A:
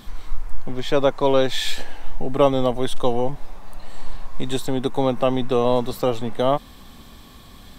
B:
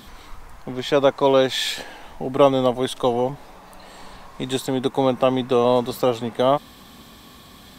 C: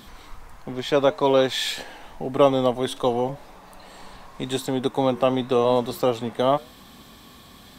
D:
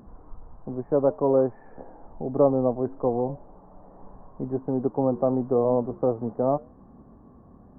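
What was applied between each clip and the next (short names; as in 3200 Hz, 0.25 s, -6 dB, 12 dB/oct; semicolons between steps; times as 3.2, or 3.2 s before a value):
HPF 140 Hz 6 dB/oct; gain +2 dB
flange 0.87 Hz, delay 5.5 ms, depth 4.1 ms, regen -87%; gain +2.5 dB
Gaussian blur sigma 9.7 samples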